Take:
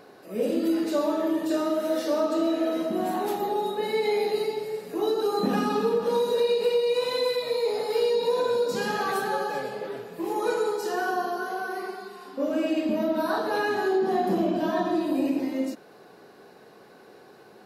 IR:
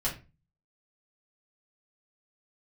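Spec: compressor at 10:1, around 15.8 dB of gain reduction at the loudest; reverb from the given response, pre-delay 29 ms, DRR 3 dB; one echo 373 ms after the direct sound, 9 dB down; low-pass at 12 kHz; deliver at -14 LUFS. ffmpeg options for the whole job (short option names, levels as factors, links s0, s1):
-filter_complex "[0:a]lowpass=12000,acompressor=threshold=0.0141:ratio=10,aecho=1:1:373:0.355,asplit=2[s0][s1];[1:a]atrim=start_sample=2205,adelay=29[s2];[s1][s2]afir=irnorm=-1:irlink=0,volume=0.355[s3];[s0][s3]amix=inputs=2:normalize=0,volume=17.8"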